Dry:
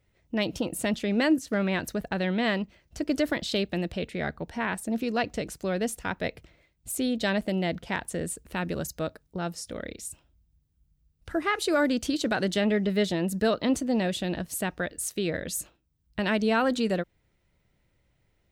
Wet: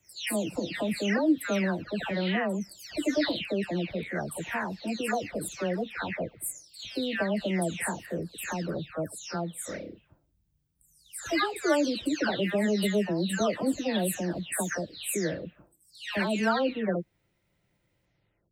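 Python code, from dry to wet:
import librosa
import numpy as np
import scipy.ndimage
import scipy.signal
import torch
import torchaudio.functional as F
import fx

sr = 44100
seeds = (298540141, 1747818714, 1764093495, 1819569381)

y = fx.spec_delay(x, sr, highs='early', ms=464)
y = fx.highpass(y, sr, hz=77.0, slope=6)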